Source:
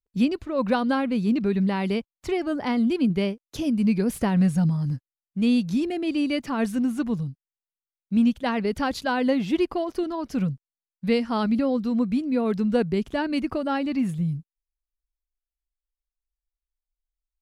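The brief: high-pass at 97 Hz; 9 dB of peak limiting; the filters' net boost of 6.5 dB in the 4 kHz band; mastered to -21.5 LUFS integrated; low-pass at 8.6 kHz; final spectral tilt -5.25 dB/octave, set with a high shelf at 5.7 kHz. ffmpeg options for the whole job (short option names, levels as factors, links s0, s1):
-af "highpass=97,lowpass=8600,equalizer=f=4000:t=o:g=5.5,highshelf=f=5700:g=9,volume=1.78,alimiter=limit=0.224:level=0:latency=1"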